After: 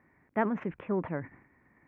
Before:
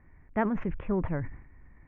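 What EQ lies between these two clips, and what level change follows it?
HPF 200 Hz 12 dB/oct; 0.0 dB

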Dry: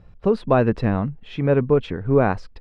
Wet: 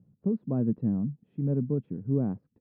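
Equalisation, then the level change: Butterworth band-pass 170 Hz, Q 1.2; air absorption 95 m; tilt +4 dB/oct; +6.0 dB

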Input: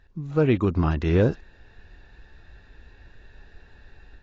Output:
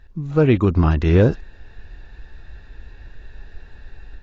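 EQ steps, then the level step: low shelf 61 Hz +8.5 dB; +4.5 dB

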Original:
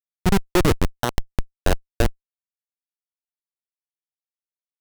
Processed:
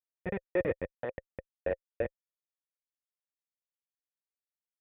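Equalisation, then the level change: vocal tract filter e; HPF 65 Hz 12 dB/oct; 0.0 dB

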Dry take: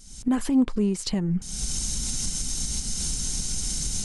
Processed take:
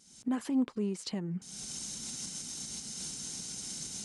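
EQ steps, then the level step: HPF 190 Hz 12 dB/oct; high shelf 7600 Hz -6.5 dB; -7.5 dB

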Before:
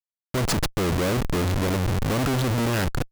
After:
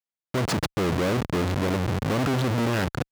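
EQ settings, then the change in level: HPF 94 Hz 12 dB/oct; high shelf 6500 Hz -9.5 dB; 0.0 dB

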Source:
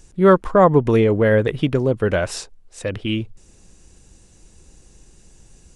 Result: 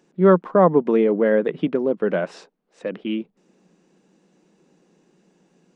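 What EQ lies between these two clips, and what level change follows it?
elliptic high-pass 170 Hz, stop band 40 dB; tape spacing loss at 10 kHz 27 dB; 0.0 dB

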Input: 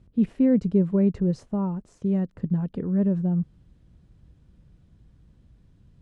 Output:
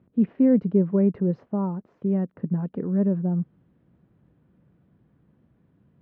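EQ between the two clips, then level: BPF 180–2000 Hz; air absorption 140 m; +2.5 dB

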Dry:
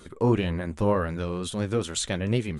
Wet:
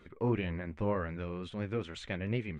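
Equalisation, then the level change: tape spacing loss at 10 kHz 25 dB; bell 2200 Hz +10.5 dB 0.84 oct; -8.0 dB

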